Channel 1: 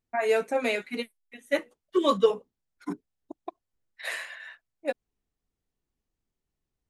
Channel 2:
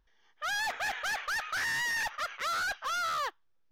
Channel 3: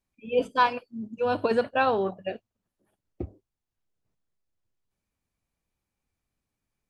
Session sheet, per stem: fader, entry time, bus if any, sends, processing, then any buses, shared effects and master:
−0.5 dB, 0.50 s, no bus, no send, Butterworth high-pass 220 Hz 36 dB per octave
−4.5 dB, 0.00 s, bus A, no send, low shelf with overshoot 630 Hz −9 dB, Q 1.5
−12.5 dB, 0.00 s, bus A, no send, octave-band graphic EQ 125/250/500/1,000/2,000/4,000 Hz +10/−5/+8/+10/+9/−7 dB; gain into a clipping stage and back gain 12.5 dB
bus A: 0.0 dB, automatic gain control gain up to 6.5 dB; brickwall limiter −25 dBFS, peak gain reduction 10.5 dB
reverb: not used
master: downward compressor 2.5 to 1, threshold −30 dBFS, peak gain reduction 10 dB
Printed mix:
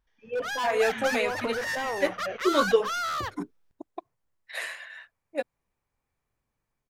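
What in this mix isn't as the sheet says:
stem 1: missing Butterworth high-pass 220 Hz 36 dB per octave
stem 2: missing low shelf with overshoot 630 Hz −9 dB, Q 1.5
master: missing downward compressor 2.5 to 1, threshold −30 dBFS, peak gain reduction 10 dB

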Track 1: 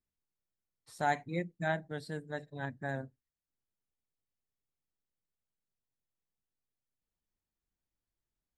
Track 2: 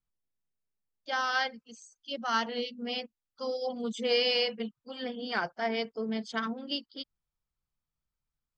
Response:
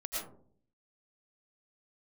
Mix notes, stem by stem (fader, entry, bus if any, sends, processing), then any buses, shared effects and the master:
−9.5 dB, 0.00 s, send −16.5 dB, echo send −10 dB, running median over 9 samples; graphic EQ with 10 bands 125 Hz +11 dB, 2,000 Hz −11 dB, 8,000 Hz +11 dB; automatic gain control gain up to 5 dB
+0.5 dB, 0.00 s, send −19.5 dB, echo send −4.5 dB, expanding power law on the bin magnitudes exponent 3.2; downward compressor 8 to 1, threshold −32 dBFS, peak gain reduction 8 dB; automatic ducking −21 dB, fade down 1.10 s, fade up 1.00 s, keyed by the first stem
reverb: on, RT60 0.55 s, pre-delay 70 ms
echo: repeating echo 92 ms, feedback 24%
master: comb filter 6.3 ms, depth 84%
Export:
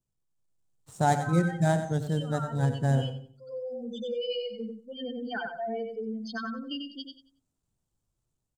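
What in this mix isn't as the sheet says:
stem 1 −9.5 dB → +1.5 dB
master: missing comb filter 6.3 ms, depth 84%

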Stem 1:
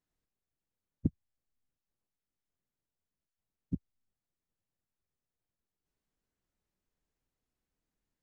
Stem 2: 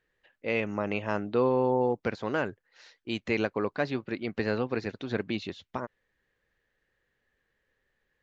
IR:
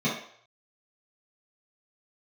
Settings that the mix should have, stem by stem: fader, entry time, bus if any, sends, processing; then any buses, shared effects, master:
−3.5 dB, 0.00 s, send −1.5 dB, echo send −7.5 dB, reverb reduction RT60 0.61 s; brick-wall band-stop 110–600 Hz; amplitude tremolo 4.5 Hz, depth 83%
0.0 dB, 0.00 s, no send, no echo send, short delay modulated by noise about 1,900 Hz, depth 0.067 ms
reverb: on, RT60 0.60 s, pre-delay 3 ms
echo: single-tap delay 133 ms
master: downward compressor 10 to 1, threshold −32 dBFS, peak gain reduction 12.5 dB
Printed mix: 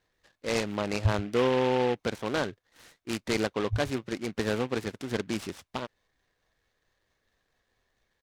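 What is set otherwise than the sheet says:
stem 1 −3.5 dB → +8.0 dB
master: missing downward compressor 10 to 1, threshold −32 dBFS, peak gain reduction 12.5 dB

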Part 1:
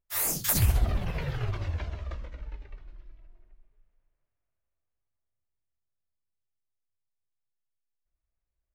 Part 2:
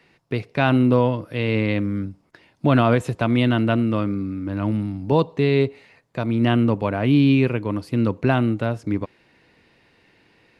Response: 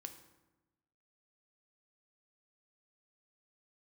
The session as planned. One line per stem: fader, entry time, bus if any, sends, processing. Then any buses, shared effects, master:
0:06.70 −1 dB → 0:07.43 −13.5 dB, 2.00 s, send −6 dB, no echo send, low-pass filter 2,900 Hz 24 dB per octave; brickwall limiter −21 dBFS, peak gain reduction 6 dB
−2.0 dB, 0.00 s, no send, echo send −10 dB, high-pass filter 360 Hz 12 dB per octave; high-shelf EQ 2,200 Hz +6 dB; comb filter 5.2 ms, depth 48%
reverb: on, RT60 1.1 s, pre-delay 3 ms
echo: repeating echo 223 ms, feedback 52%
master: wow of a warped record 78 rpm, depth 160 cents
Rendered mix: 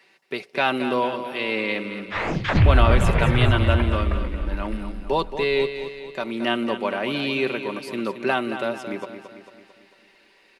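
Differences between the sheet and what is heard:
stem 1 −1.0 dB → +10.5 dB
master: missing wow of a warped record 78 rpm, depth 160 cents

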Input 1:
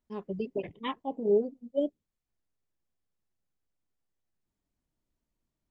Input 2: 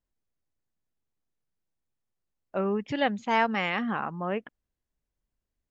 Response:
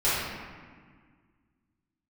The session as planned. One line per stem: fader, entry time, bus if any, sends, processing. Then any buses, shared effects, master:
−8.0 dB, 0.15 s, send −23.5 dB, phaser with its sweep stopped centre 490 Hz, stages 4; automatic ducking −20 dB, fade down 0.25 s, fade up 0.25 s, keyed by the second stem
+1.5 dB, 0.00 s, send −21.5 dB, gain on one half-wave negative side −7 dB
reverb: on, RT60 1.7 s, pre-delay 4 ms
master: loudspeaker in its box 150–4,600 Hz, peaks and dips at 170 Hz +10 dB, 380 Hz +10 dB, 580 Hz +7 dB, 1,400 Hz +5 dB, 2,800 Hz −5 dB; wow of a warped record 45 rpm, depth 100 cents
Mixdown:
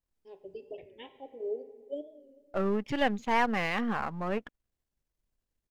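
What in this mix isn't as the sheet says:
stem 2: send off
master: missing loudspeaker in its box 150–4,600 Hz, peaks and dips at 170 Hz +10 dB, 380 Hz +10 dB, 580 Hz +7 dB, 1,400 Hz +5 dB, 2,800 Hz −5 dB

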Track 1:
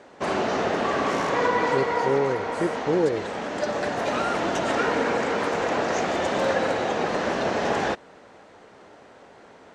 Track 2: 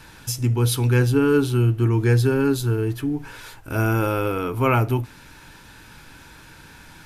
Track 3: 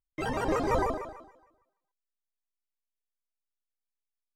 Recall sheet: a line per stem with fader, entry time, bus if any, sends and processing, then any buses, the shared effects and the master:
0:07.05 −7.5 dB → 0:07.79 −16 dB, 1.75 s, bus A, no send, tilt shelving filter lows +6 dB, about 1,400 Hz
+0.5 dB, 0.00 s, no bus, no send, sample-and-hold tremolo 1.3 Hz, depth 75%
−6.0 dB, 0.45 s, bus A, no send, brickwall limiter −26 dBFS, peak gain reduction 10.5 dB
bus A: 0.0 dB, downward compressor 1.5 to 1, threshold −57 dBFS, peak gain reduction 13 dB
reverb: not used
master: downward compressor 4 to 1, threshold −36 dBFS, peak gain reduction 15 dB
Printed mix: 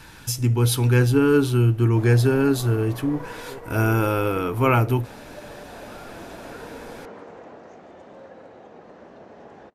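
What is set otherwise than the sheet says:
stem 2: missing sample-and-hold tremolo 1.3 Hz, depth 75%
master: missing downward compressor 4 to 1, threshold −36 dBFS, peak gain reduction 15 dB

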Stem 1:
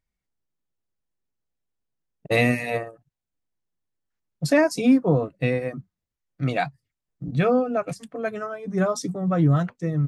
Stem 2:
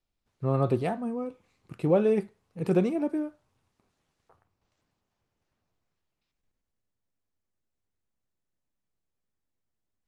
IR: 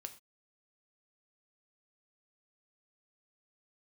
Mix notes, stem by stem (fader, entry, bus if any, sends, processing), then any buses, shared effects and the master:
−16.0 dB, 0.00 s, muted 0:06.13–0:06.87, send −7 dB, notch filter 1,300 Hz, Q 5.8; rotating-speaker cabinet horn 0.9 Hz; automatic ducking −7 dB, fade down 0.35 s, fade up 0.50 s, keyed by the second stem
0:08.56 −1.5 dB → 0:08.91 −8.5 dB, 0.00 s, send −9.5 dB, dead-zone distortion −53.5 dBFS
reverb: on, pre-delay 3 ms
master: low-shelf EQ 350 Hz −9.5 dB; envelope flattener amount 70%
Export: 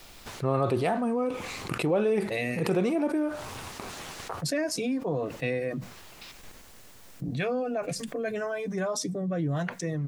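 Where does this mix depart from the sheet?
stem 2: missing dead-zone distortion −53.5 dBFS
reverb return −7.0 dB

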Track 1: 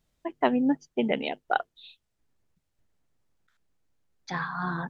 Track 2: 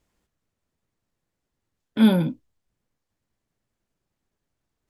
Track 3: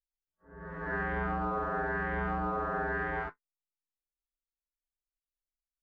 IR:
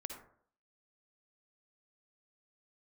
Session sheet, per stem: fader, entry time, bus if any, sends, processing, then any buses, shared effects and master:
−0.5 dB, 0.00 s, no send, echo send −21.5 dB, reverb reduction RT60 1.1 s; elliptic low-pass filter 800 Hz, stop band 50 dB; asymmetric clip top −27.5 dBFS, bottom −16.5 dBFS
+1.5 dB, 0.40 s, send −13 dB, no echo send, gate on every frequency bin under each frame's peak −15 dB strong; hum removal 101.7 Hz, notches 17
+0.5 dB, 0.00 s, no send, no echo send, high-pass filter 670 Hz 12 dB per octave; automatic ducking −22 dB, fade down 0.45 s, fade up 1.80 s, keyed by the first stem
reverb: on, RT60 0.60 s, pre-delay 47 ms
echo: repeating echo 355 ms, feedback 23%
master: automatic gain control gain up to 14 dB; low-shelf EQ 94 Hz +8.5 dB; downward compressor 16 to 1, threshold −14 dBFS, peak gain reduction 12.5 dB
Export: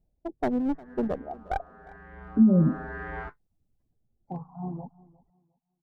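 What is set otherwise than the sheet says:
stem 3: missing high-pass filter 670 Hz 12 dB per octave
master: missing automatic gain control gain up to 14 dB

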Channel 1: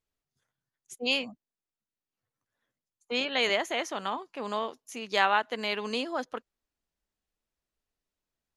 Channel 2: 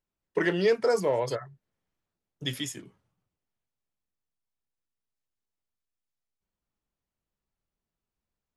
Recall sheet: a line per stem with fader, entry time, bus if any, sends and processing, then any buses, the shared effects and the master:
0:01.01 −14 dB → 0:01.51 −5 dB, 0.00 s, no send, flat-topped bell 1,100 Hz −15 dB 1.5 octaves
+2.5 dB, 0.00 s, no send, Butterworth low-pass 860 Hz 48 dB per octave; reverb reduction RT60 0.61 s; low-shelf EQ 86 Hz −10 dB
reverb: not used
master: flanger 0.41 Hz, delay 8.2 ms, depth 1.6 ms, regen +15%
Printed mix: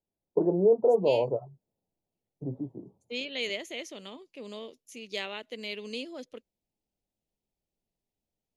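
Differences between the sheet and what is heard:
stem 2: missing reverb reduction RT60 0.61 s
master: missing flanger 0.41 Hz, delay 8.2 ms, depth 1.6 ms, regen +15%

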